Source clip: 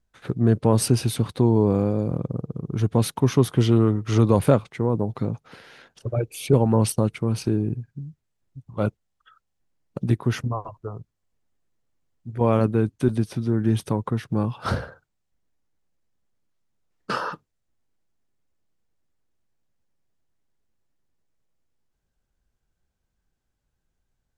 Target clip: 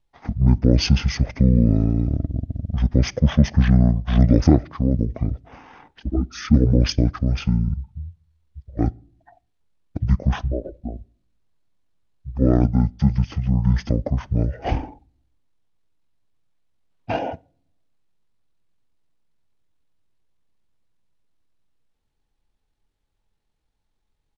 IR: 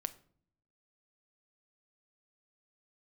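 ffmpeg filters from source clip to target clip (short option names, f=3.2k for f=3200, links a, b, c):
-filter_complex "[0:a]asetrate=24046,aresample=44100,atempo=1.83401,asplit=2[a][b];[1:a]atrim=start_sample=2205,lowpass=7.6k[c];[b][c]afir=irnorm=-1:irlink=0,volume=-9dB[d];[a][d]amix=inputs=2:normalize=0,volume=1dB"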